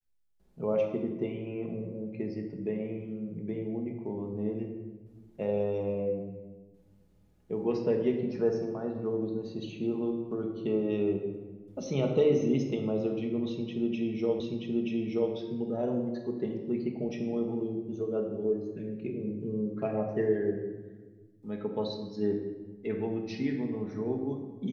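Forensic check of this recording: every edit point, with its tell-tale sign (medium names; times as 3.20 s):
14.40 s: repeat of the last 0.93 s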